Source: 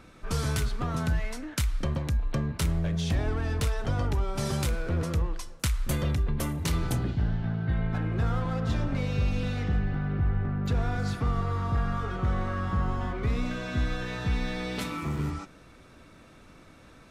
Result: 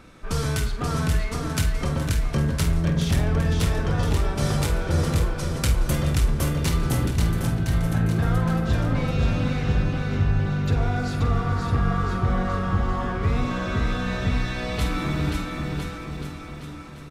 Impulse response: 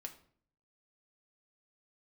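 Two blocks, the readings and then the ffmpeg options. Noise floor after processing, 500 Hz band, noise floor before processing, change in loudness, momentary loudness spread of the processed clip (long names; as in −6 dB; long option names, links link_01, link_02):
−36 dBFS, +6.0 dB, −53 dBFS, +5.5 dB, 6 LU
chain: -filter_complex "[0:a]aecho=1:1:530|1007|1436|1823|2170:0.631|0.398|0.251|0.158|0.1,asplit=2[link_01][link_02];[1:a]atrim=start_sample=2205,adelay=48[link_03];[link_02][link_03]afir=irnorm=-1:irlink=0,volume=-4.5dB[link_04];[link_01][link_04]amix=inputs=2:normalize=0,volume=3dB"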